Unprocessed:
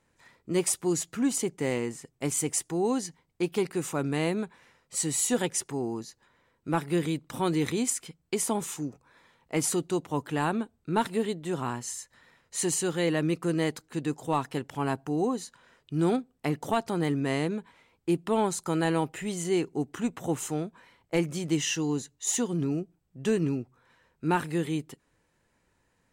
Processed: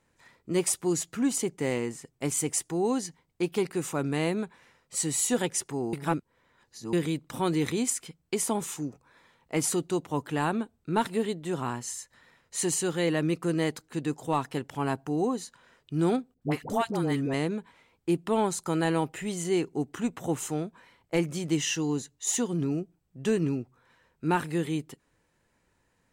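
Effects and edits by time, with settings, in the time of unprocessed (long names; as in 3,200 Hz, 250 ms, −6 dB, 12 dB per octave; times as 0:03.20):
0:05.93–0:06.93: reverse
0:16.34–0:17.34: all-pass dispersion highs, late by 74 ms, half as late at 660 Hz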